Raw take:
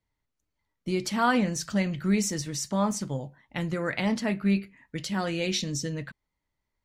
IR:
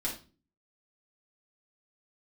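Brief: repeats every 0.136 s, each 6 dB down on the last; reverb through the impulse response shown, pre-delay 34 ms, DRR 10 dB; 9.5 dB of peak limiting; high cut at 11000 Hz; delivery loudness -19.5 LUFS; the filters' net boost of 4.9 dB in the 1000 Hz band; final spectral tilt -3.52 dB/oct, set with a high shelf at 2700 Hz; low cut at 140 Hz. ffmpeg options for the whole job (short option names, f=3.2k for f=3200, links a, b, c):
-filter_complex "[0:a]highpass=140,lowpass=11k,equalizer=f=1k:t=o:g=5,highshelf=f=2.7k:g=8,alimiter=limit=-17dB:level=0:latency=1,aecho=1:1:136|272|408|544|680|816:0.501|0.251|0.125|0.0626|0.0313|0.0157,asplit=2[a][b];[1:a]atrim=start_sample=2205,adelay=34[c];[b][c]afir=irnorm=-1:irlink=0,volume=-13.5dB[d];[a][d]amix=inputs=2:normalize=0,volume=7.5dB"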